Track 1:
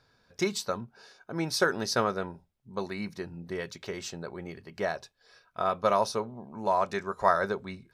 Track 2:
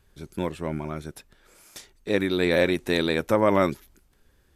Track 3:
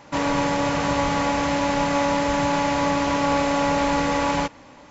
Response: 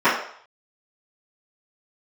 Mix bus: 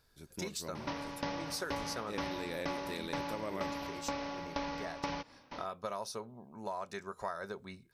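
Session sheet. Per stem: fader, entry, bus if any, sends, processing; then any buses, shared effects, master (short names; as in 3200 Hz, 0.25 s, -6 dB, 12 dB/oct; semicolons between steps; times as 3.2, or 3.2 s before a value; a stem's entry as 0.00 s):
-8.5 dB, 0.00 s, no send, dry
-13.5 dB, 0.00 s, no send, dry
+3.0 dB, 0.75 s, no send, compressor, threshold -25 dBFS, peak gain reduction 8 dB; steep low-pass 5900 Hz 96 dB/oct; dB-ramp tremolo decaying 2.1 Hz, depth 23 dB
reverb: off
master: high shelf 5600 Hz +11 dB; compressor 3:1, threshold -37 dBFS, peak gain reduction 11 dB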